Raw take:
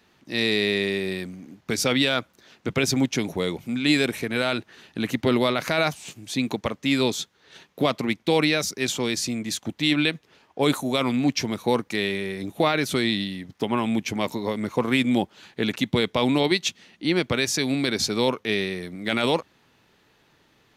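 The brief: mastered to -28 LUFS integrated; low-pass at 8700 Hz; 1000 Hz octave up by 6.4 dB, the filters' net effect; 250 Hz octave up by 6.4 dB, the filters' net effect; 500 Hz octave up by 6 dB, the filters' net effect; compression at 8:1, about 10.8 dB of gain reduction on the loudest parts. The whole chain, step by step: LPF 8700 Hz; bell 250 Hz +6 dB; bell 500 Hz +4 dB; bell 1000 Hz +6.5 dB; compressor 8:1, threshold -22 dBFS; gain -0.5 dB

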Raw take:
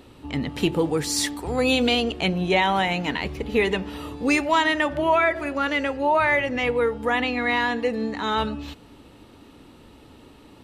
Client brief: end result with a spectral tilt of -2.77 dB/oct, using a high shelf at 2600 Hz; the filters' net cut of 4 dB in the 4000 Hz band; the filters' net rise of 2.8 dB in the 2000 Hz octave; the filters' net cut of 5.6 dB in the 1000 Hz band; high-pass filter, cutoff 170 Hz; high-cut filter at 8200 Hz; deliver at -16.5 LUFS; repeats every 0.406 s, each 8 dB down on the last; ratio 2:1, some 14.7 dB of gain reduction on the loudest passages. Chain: HPF 170 Hz; LPF 8200 Hz; bell 1000 Hz -8.5 dB; bell 2000 Hz +8.5 dB; high shelf 2600 Hz -4.5 dB; bell 4000 Hz -5.5 dB; compressor 2:1, threshold -44 dBFS; feedback echo 0.406 s, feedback 40%, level -8 dB; gain +19 dB

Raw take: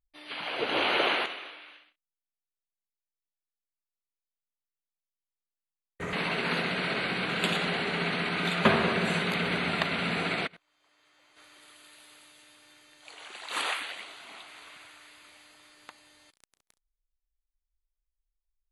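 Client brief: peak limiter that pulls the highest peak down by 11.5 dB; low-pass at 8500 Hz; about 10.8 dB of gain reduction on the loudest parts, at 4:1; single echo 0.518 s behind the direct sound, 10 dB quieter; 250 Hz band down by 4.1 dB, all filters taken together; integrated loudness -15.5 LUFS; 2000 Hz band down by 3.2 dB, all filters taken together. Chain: LPF 8500 Hz; bell 250 Hz -6 dB; bell 2000 Hz -4 dB; compressor 4:1, threshold -33 dBFS; limiter -29.5 dBFS; echo 0.518 s -10 dB; gain +23.5 dB

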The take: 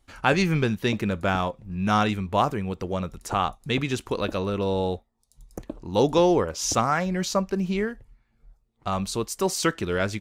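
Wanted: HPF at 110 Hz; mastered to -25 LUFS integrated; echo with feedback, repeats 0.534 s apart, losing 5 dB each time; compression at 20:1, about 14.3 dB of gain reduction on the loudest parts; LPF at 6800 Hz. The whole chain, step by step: HPF 110 Hz; LPF 6800 Hz; compressor 20:1, threshold -29 dBFS; feedback echo 0.534 s, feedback 56%, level -5 dB; gain +9 dB

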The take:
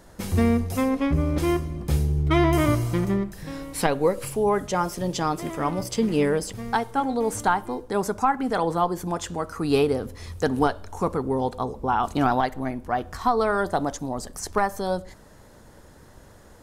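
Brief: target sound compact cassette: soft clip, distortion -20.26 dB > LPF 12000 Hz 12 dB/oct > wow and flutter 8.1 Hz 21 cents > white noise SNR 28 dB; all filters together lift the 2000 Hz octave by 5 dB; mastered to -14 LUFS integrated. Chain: bell 2000 Hz +6.5 dB; soft clip -11.5 dBFS; LPF 12000 Hz 12 dB/oct; wow and flutter 8.1 Hz 21 cents; white noise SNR 28 dB; gain +11 dB

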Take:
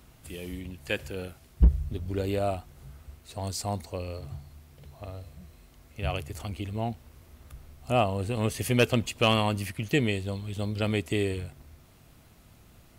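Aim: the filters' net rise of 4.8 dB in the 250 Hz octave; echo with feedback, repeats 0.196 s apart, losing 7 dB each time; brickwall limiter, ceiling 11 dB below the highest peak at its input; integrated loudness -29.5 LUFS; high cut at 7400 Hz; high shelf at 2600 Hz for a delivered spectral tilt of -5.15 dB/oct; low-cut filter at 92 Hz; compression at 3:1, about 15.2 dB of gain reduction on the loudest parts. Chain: HPF 92 Hz; LPF 7400 Hz; bell 250 Hz +6 dB; high shelf 2600 Hz +5.5 dB; compressor 3:1, threshold -37 dBFS; limiter -29.5 dBFS; feedback echo 0.196 s, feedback 45%, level -7 dB; gain +12.5 dB

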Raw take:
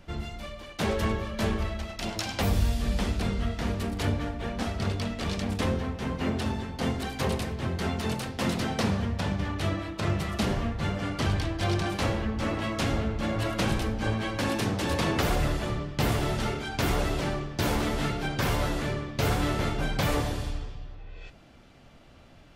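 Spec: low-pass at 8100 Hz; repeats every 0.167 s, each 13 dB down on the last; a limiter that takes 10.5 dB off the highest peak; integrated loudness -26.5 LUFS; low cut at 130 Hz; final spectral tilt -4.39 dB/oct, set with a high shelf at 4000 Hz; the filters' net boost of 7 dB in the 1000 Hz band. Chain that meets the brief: HPF 130 Hz; LPF 8100 Hz; bell 1000 Hz +8.5 dB; high shelf 4000 Hz +7.5 dB; limiter -20 dBFS; feedback echo 0.167 s, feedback 22%, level -13 dB; gain +3.5 dB

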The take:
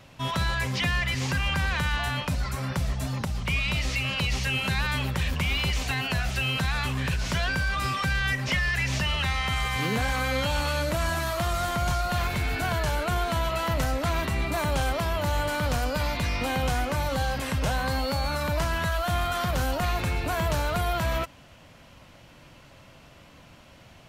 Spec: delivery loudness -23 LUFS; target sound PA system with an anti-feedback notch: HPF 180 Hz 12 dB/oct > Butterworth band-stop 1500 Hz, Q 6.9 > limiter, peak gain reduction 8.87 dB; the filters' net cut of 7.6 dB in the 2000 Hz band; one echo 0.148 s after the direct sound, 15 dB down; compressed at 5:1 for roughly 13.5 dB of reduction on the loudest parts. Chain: bell 2000 Hz -7.5 dB; compressor 5:1, threshold -39 dBFS; HPF 180 Hz 12 dB/oct; Butterworth band-stop 1500 Hz, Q 6.9; echo 0.148 s -15 dB; gain +23.5 dB; limiter -14 dBFS

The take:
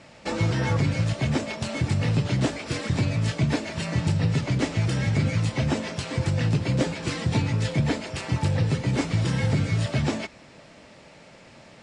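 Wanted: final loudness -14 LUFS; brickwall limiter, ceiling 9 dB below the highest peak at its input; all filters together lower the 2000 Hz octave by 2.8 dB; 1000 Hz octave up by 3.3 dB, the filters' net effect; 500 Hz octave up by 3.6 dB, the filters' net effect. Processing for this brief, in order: bell 500 Hz +3.5 dB; bell 1000 Hz +4 dB; bell 2000 Hz -4.5 dB; gain +13.5 dB; limiter -4.5 dBFS

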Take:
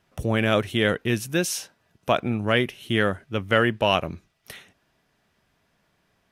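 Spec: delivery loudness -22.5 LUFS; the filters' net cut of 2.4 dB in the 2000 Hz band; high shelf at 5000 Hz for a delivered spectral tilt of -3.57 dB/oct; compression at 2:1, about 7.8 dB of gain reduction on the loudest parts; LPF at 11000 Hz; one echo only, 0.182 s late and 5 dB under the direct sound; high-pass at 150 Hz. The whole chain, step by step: HPF 150 Hz; LPF 11000 Hz; bell 2000 Hz -4.5 dB; high shelf 5000 Hz +8.5 dB; compressor 2:1, threshold -30 dBFS; echo 0.182 s -5 dB; gain +7.5 dB

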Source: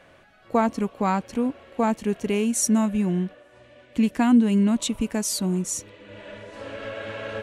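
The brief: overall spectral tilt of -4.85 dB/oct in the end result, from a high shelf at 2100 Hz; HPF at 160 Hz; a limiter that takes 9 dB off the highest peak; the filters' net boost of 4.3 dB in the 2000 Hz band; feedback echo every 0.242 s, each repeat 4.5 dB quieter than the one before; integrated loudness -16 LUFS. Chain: HPF 160 Hz; bell 2000 Hz +8.5 dB; high shelf 2100 Hz -5 dB; limiter -16.5 dBFS; feedback echo 0.242 s, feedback 60%, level -4.5 dB; gain +10 dB

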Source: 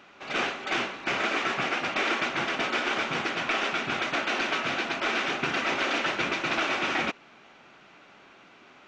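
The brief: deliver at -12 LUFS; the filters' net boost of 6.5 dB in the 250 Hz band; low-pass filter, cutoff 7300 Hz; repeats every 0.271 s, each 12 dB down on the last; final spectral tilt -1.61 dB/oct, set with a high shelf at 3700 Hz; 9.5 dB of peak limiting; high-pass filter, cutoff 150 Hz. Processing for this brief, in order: HPF 150 Hz; LPF 7300 Hz; bell 250 Hz +9 dB; high shelf 3700 Hz -4.5 dB; limiter -21.5 dBFS; feedback echo 0.271 s, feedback 25%, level -12 dB; gain +18 dB

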